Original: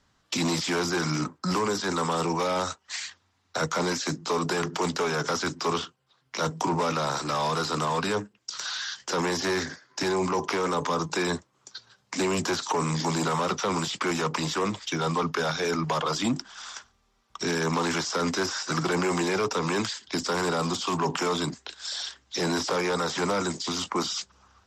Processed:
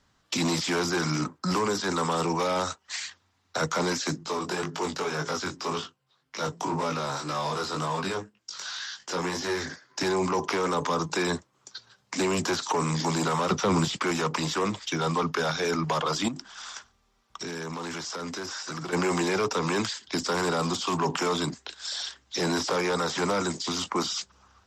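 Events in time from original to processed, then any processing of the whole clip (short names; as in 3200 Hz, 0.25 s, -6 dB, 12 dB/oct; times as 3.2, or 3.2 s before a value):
4.23–9.65 chorus 1.9 Hz, delay 19 ms, depth 3.1 ms
13.5–13.97 low shelf 320 Hz +9 dB
16.28–18.93 compressor 5:1, threshold -32 dBFS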